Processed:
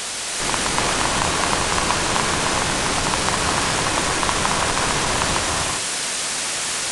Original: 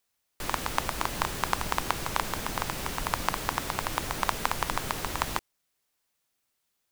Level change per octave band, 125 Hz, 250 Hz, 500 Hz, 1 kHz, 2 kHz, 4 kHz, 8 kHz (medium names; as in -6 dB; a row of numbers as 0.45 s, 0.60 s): +10.5 dB, +12.5 dB, +13.0 dB, +9.5 dB, +12.5 dB, +15.5 dB, +17.0 dB